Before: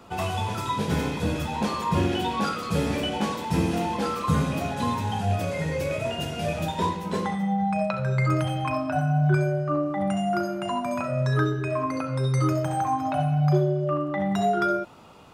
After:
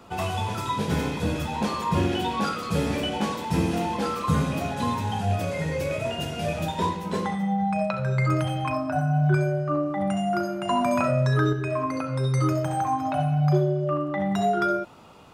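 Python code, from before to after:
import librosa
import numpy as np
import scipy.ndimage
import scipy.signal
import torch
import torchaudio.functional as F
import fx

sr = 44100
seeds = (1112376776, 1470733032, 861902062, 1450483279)

y = fx.peak_eq(x, sr, hz=3000.0, db=-6.5, octaves=0.77, at=(8.73, 9.13))
y = fx.env_flatten(y, sr, amount_pct=70, at=(10.69, 11.53))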